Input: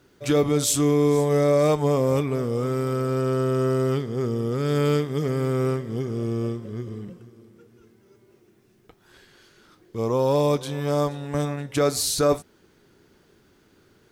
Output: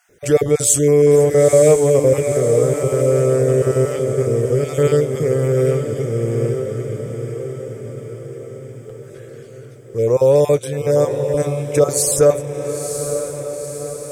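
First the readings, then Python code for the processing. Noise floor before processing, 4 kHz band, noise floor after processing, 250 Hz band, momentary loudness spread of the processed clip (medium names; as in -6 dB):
-60 dBFS, no reading, -37 dBFS, +2.0 dB, 18 LU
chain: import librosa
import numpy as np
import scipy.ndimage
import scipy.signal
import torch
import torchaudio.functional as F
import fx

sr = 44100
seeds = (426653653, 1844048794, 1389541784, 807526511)

y = fx.spec_dropout(x, sr, seeds[0], share_pct=22)
y = fx.graphic_eq_10(y, sr, hz=(125, 250, 500, 1000, 2000, 4000, 8000), db=(4, -8, 11, -10, 5, -10, 9))
y = fx.echo_diffused(y, sr, ms=941, feedback_pct=57, wet_db=-8)
y = y * 10.0 ** (4.0 / 20.0)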